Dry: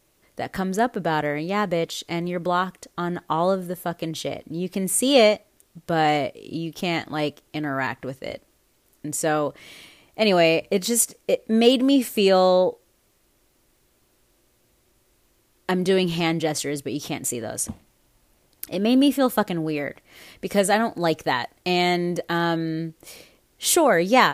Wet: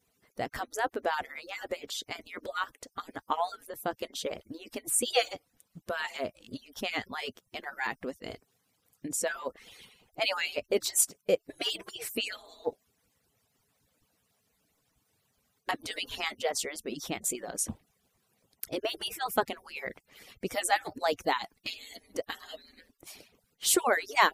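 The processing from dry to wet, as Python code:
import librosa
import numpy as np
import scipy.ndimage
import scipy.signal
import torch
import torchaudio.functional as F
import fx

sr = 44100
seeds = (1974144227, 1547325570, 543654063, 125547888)

y = fx.hpss_only(x, sr, part='percussive')
y = fx.peak_eq(y, sr, hz=fx.line((21.32, 390.0), (21.95, 1300.0)), db=-14.5, octaves=0.51, at=(21.32, 21.95), fade=0.02)
y = F.gain(torch.from_numpy(y), -4.5).numpy()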